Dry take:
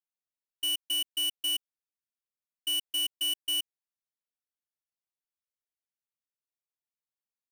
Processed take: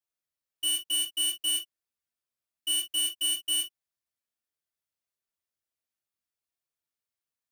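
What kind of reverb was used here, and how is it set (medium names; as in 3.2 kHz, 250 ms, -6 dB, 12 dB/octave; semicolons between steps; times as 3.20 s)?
gated-style reverb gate 90 ms falling, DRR -3.5 dB; trim -2.5 dB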